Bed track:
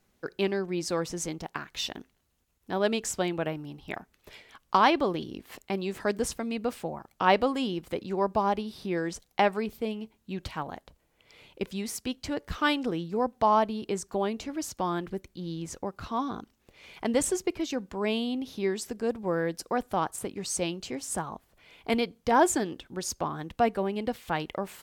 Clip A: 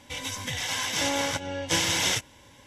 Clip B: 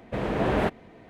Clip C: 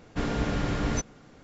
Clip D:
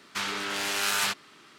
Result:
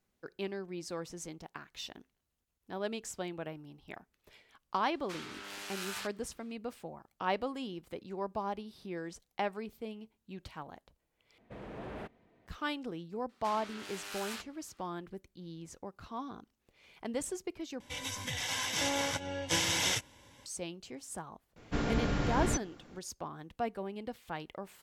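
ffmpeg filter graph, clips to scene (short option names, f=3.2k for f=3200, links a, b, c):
-filter_complex "[4:a]asplit=2[a][b];[0:a]volume=-10.5dB[c];[2:a]asoftclip=type=tanh:threshold=-19.5dB[d];[c]asplit=3[e][f][g];[e]atrim=end=11.384[h];[d]atrim=end=1.09,asetpts=PTS-STARTPTS,volume=-17dB[i];[f]atrim=start=12.466:end=17.804[j];[1:a]atrim=end=2.66,asetpts=PTS-STARTPTS,volume=-5.5dB[k];[g]atrim=start=20.456[l];[a]atrim=end=1.58,asetpts=PTS-STARTPTS,volume=-14.5dB,afade=t=in:d=0.004:c=hsin,afade=t=out:st=1.576:d=0.004:c=hsin,adelay=4940[m];[b]atrim=end=1.58,asetpts=PTS-STARTPTS,volume=-16dB,afade=t=in:d=0.004:c=hsin,afade=t=out:st=1.576:d=0.004:c=hsin,adelay=13290[n];[3:a]atrim=end=1.43,asetpts=PTS-STARTPTS,volume=-3.5dB,afade=t=in:d=0.004:c=hsin,afade=t=out:st=1.426:d=0.004:c=hsin,adelay=21560[o];[h][i]acrossfade=d=0.004:c1=hsin:c2=hsin[p];[p][j]acrossfade=d=0.004:c1=hsin:c2=hsin[q];[q][k]acrossfade=d=0.004:c1=hsin:c2=hsin[r];[r][l]acrossfade=d=0.004:c1=hsin:c2=hsin[s];[s][m][n][o]amix=inputs=4:normalize=0"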